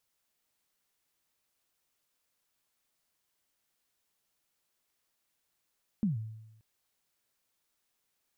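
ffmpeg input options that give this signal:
-f lavfi -i "aevalsrc='0.0668*pow(10,-3*t/0.95)*sin(2*PI*(230*0.139/log(110/230)*(exp(log(110/230)*min(t,0.139)/0.139)-1)+110*max(t-0.139,0)))':d=0.58:s=44100"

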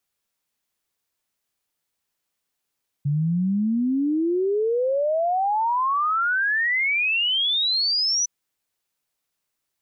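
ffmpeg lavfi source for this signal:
-f lavfi -i "aevalsrc='0.112*clip(min(t,5.21-t)/0.01,0,1)*sin(2*PI*140*5.21/log(6000/140)*(exp(log(6000/140)*t/5.21)-1))':d=5.21:s=44100"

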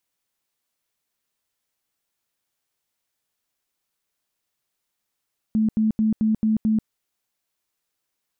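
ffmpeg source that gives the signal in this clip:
-f lavfi -i "aevalsrc='0.15*sin(2*PI*218*mod(t,0.22))*lt(mod(t,0.22),30/218)':d=1.32:s=44100"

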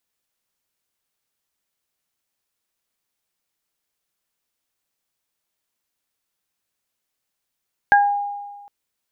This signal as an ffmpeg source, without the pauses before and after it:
-f lavfi -i "aevalsrc='0.316*pow(10,-3*t/1.44)*sin(2*PI*813*t)+0.355*pow(10,-3*t/0.27)*sin(2*PI*1626*t)':d=0.76:s=44100"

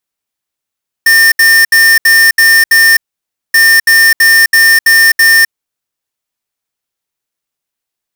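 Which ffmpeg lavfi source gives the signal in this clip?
-f lavfi -i "aevalsrc='0.531*(2*lt(mod(1810*t,1),0.5)-1)*clip(min(mod(mod(t,2.48),0.33),0.26-mod(mod(t,2.48),0.33))/0.005,0,1)*lt(mod(t,2.48),1.98)':d=4.96:s=44100"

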